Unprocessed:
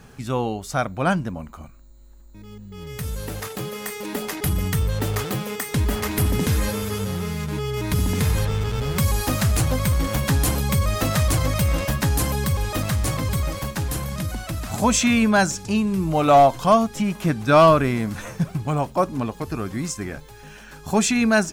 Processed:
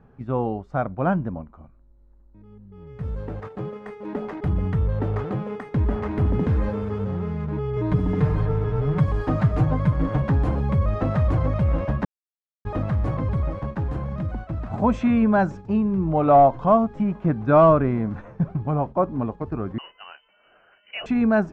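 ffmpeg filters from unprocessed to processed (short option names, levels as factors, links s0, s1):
-filter_complex "[0:a]asettb=1/sr,asplit=3[s0][s1][s2];[s0]atrim=end=7.764[s3];[s1]atrim=start=7.76:end=10.22,asetpts=PTS-STARTPTS,afade=t=in:d=0.004:c=qsin,afade=t=out:st=2.456:d=0.004:c=qsin,aecho=1:1:6.6:0.75,atrim=end_sample=108486[s4];[s2]atrim=start=10.216[s5];[s3][s4]acrossfade=d=0.004:c1=hsin:c2=qsin[s6];[s6][s5]acrossfade=d=0.004:c1=qsin:c2=hsin,asettb=1/sr,asplit=3[s7][s8][s9];[s7]atrim=end=19.784[s10];[s8]atrim=start=19.78:end=21.06,asetpts=PTS-STARTPTS,afade=t=in:d=0.004:c=qsin,afade=t=out:st=1.276:d=0.004:c=qsin,lowpass=f=2600:t=q:w=0.5098,lowpass=f=2600:t=q:w=0.6013,lowpass=f=2600:t=q:w=0.9,lowpass=f=2600:t=q:w=2.563,afreqshift=-3100[s11];[s9]atrim=start=21.056[s12];[s10][s11]acrossfade=d=0.004:c1=hsin:c2=qsin[s13];[s13][s12]acrossfade=d=0.004:c1=qsin:c2=hsin,asplit=3[s14][s15][s16];[s14]atrim=end=12.05,asetpts=PTS-STARTPTS,afade=t=out:st=12.046:d=0.004:c=hsin[s17];[s15]atrim=start=12.05:end=12.65,asetpts=PTS-STARTPTS,volume=0[s18];[s16]atrim=start=12.65,asetpts=PTS-STARTPTS,afade=t=in:d=0.004:c=hsin[s19];[s17][s18][s19]concat=n=3:v=0:a=1,agate=range=0.501:threshold=0.0282:ratio=16:detection=peak,lowpass=1100"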